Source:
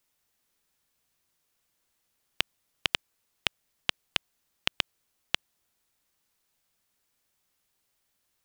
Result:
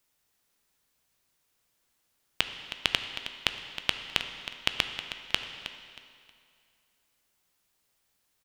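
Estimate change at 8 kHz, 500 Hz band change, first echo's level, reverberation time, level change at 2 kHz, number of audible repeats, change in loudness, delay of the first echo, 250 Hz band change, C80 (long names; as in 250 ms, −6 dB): +1.5 dB, +2.0 dB, −12.0 dB, 2.3 s, +2.0 dB, 3, +1.0 dB, 316 ms, +2.0 dB, 7.5 dB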